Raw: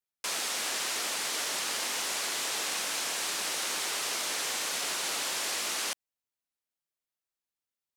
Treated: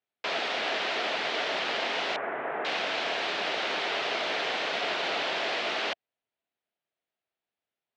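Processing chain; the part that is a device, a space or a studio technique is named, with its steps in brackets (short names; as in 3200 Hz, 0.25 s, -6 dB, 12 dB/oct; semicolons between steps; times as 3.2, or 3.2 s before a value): guitar cabinet (speaker cabinet 98–3600 Hz, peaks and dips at 420 Hz +4 dB, 670 Hz +8 dB, 1100 Hz -3 dB); 2.16–2.65 inverse Chebyshev low-pass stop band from 4500 Hz, stop band 50 dB; gain +5.5 dB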